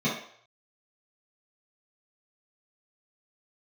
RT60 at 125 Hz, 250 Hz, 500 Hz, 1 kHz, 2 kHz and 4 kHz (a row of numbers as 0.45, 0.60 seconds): 0.35, 0.40, 0.60, 0.60, 0.60, 0.55 seconds